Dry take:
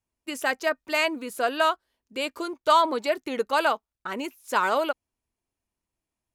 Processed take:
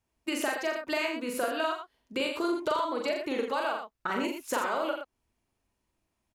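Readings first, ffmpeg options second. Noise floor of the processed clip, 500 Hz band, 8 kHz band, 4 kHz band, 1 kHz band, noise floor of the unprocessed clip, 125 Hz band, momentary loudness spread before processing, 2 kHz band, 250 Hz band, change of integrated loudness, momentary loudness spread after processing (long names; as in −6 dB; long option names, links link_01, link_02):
−82 dBFS, −4.0 dB, −1.5 dB, −5.0 dB, −7.5 dB, below −85 dBFS, can't be measured, 13 LU, −5.5 dB, +0.5 dB, −5.5 dB, 6 LU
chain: -af "highshelf=frequency=5900:gain=-6.5,acompressor=threshold=-34dB:ratio=12,aecho=1:1:40.82|87.46|119.5:0.708|0.355|0.398,volume=5.5dB"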